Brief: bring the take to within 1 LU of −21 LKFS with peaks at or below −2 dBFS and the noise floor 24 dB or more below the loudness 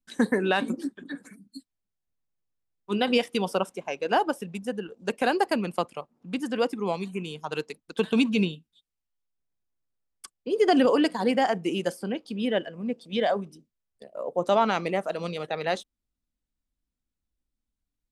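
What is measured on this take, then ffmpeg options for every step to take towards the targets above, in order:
integrated loudness −27.0 LKFS; sample peak −10.0 dBFS; target loudness −21.0 LKFS
→ -af "volume=6dB"

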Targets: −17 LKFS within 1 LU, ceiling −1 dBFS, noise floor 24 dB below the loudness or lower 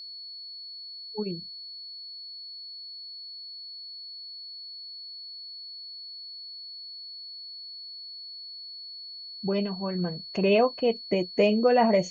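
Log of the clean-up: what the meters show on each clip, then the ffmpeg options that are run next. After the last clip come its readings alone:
interfering tone 4,400 Hz; level of the tone −39 dBFS; integrated loudness −31.0 LKFS; sample peak −11.0 dBFS; target loudness −17.0 LKFS
→ -af "bandreject=frequency=4400:width=30"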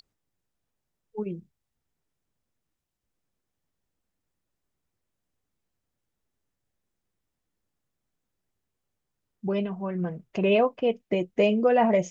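interfering tone none found; integrated loudness −25.5 LKFS; sample peak −11.0 dBFS; target loudness −17.0 LKFS
→ -af "volume=8.5dB"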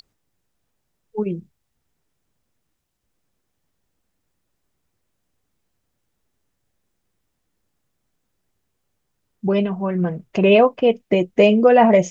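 integrated loudness −17.0 LKFS; sample peak −2.5 dBFS; background noise floor −75 dBFS

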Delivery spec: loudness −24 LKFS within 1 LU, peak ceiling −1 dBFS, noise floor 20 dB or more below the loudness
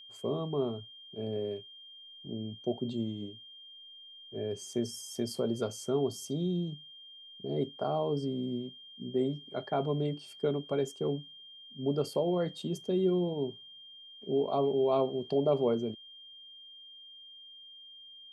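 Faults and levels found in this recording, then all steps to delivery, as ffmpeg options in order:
interfering tone 3,200 Hz; level of the tone −49 dBFS; integrated loudness −33.0 LKFS; sample peak −16.5 dBFS; target loudness −24.0 LKFS
→ -af "bandreject=frequency=3200:width=30"
-af "volume=9dB"

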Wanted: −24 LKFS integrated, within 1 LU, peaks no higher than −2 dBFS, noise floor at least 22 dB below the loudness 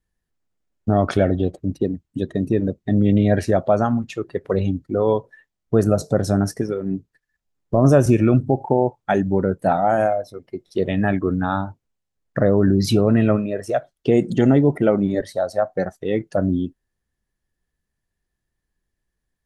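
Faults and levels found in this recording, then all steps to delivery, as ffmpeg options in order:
integrated loudness −20.0 LKFS; sample peak −3.5 dBFS; target loudness −24.0 LKFS
→ -af "volume=-4dB"

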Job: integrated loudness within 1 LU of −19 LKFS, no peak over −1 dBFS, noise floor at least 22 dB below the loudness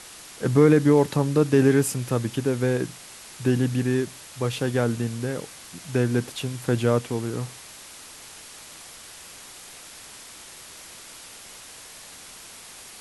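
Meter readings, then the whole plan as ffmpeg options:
background noise floor −44 dBFS; target noise floor −46 dBFS; integrated loudness −23.5 LKFS; sample peak −6.0 dBFS; target loudness −19.0 LKFS
→ -af "afftdn=noise_reduction=6:noise_floor=-44"
-af "volume=4.5dB"

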